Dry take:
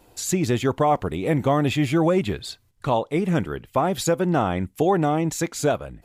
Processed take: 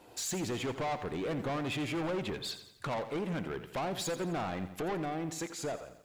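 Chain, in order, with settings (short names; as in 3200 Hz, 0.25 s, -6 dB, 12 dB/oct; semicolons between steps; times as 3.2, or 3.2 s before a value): ending faded out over 1.54 s; recorder AGC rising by 12 dB/s; HPF 230 Hz 6 dB/oct; high shelf 7400 Hz -10 dB; in parallel at +2.5 dB: compressor, threshold -32 dBFS, peak gain reduction 15 dB; on the sum: soft clip -24 dBFS, distortion -7 dB; lo-fi delay 86 ms, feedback 55%, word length 9-bit, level -12 dB; gain -7.5 dB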